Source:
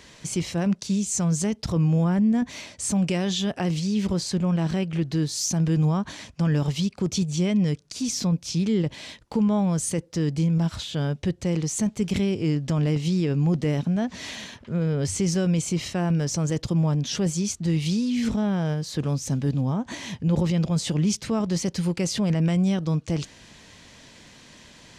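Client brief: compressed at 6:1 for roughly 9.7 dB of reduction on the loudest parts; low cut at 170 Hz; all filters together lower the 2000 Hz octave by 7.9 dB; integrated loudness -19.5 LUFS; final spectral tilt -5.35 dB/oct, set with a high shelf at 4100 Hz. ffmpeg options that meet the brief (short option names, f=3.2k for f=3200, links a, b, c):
-af "highpass=170,equalizer=f=2k:t=o:g=-8,highshelf=f=4.1k:g=-9,acompressor=threshold=-31dB:ratio=6,volume=16dB"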